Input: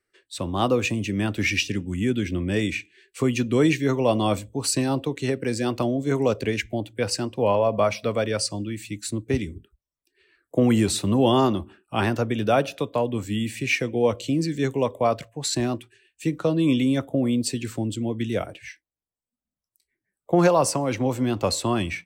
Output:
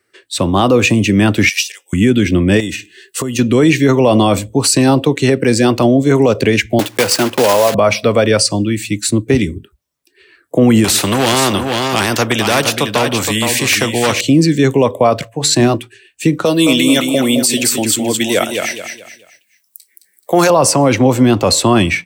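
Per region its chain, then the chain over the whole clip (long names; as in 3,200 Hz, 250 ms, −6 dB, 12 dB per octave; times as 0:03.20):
0:01.49–0:01.93: Butterworth high-pass 520 Hz + first difference
0:02.60–0:03.39: downward compressor 5 to 1, threshold −32 dBFS + Butterworth band-reject 2,300 Hz, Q 6.5 + high-shelf EQ 7,000 Hz +9.5 dB
0:06.79–0:07.75: one scale factor per block 3 bits + low-shelf EQ 200 Hz −11.5 dB + multiband upward and downward compressor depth 40%
0:10.84–0:14.21: hard clipping −14.5 dBFS + single-tap delay 469 ms −10.5 dB + every bin compressed towards the loudest bin 2 to 1
0:15.35–0:15.75: high-pass filter 52 Hz + mains-hum notches 50/100/150/200/250/300/350/400/450 Hz
0:16.45–0:20.50: RIAA equalisation recording + repeating echo 215 ms, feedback 34%, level −6.5 dB
whole clip: high-pass filter 88 Hz; boost into a limiter +16 dB; level −1 dB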